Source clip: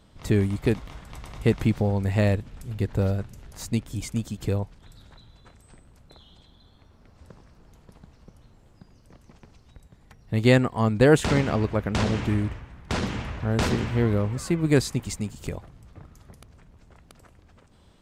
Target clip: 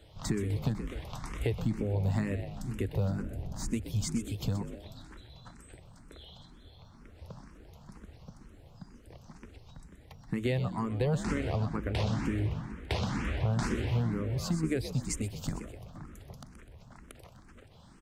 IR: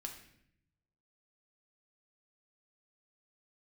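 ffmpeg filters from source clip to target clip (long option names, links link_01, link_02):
-filter_complex "[0:a]acrossover=split=110[link_01][link_02];[link_01]alimiter=level_in=7dB:limit=-24dB:level=0:latency=1,volume=-7dB[link_03];[link_02]acompressor=threshold=-32dB:ratio=5[link_04];[link_03][link_04]amix=inputs=2:normalize=0,asettb=1/sr,asplit=3[link_05][link_06][link_07];[link_05]atrim=end=3.224[link_08];[link_06]atrim=start=3.22:end=3.71,asetpts=PTS-STARTPTS,afade=type=in:duration=0.004:curve=qsin,afade=type=out:start_time=0.486:duration=0.004:curve=qsin,tiltshelf=frequency=730:gain=6.5[link_09];[link_07]atrim=start=3.706[link_10];[link_08][link_09]acrossfade=duration=0.004:curve1=hsin:curve2=qsin[link_11];[link_11][link_10]acrossfade=duration=0.004:curve1=qsin:curve2=hsin,asplit=6[link_12][link_13][link_14][link_15][link_16][link_17];[link_13]adelay=126,afreqshift=53,volume=-11dB[link_18];[link_14]adelay=252,afreqshift=106,volume=-17.7dB[link_19];[link_15]adelay=378,afreqshift=159,volume=-24.5dB[link_20];[link_16]adelay=504,afreqshift=212,volume=-31.2dB[link_21];[link_17]adelay=630,afreqshift=265,volume=-38dB[link_22];[link_12][link_18][link_19][link_20][link_21][link_22]amix=inputs=6:normalize=0,asplit=2[link_23][link_24];[link_24]afreqshift=2.1[link_25];[link_23][link_25]amix=inputs=2:normalize=1,volume=3.5dB"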